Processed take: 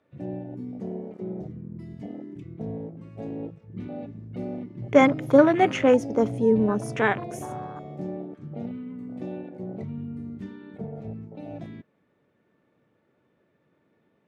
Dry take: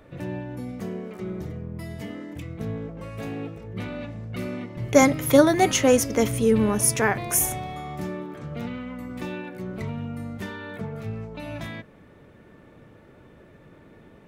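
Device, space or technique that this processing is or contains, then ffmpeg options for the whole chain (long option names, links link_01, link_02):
over-cleaned archive recording: -af "highpass=140,lowpass=7000,afwtdn=0.0398"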